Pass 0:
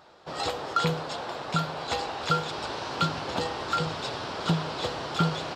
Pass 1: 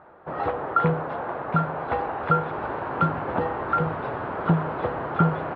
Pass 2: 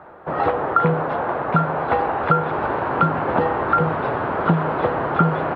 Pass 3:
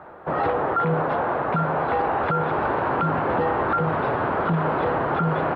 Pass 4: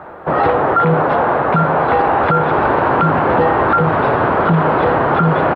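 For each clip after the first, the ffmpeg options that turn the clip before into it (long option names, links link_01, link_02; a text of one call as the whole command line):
ffmpeg -i in.wav -af "lowpass=frequency=1800:width=0.5412,lowpass=frequency=1800:width=1.3066,volume=5dB" out.wav
ffmpeg -i in.wav -filter_complex "[0:a]acrossover=split=130|2100[link_01][link_02][link_03];[link_01]acompressor=threshold=-43dB:ratio=4[link_04];[link_02]acompressor=threshold=-21dB:ratio=4[link_05];[link_03]acompressor=threshold=-41dB:ratio=4[link_06];[link_04][link_05][link_06]amix=inputs=3:normalize=0,volume=7.5dB" out.wav
ffmpeg -i in.wav -af "alimiter=limit=-14.5dB:level=0:latency=1:release=10" out.wav
ffmpeg -i in.wav -af "aecho=1:1:85:0.2,volume=9dB" out.wav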